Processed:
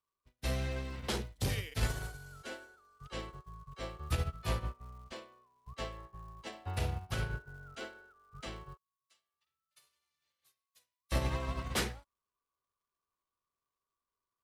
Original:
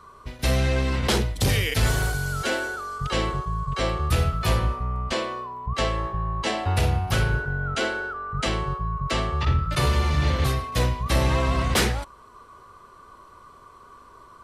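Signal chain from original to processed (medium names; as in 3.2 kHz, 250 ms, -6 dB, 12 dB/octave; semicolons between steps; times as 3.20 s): crackle 380 per s -36 dBFS; 8.77–11.12 s: differentiator; upward expansion 2.5:1, over -42 dBFS; trim -8 dB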